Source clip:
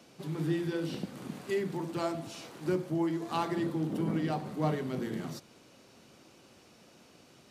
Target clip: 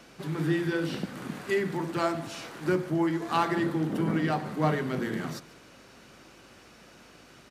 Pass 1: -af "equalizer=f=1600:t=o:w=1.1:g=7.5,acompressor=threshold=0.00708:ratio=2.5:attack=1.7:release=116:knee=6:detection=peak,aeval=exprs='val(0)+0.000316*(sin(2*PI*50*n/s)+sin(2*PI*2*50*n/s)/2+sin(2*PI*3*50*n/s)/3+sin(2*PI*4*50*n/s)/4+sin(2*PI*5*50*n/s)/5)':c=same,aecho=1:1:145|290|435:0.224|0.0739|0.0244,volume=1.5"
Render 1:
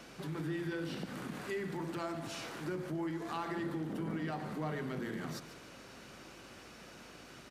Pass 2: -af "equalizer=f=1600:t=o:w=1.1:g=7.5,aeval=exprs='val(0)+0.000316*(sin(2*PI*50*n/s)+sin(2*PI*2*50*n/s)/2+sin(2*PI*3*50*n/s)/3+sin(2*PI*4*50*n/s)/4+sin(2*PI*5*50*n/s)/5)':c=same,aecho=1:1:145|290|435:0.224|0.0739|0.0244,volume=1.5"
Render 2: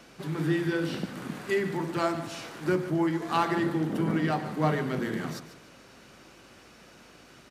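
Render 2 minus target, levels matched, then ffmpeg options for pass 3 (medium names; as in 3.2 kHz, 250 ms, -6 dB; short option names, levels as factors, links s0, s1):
echo-to-direct +7 dB
-af "equalizer=f=1600:t=o:w=1.1:g=7.5,aeval=exprs='val(0)+0.000316*(sin(2*PI*50*n/s)+sin(2*PI*2*50*n/s)/2+sin(2*PI*3*50*n/s)/3+sin(2*PI*4*50*n/s)/4+sin(2*PI*5*50*n/s)/5)':c=same,aecho=1:1:145|290|435:0.1|0.033|0.0109,volume=1.5"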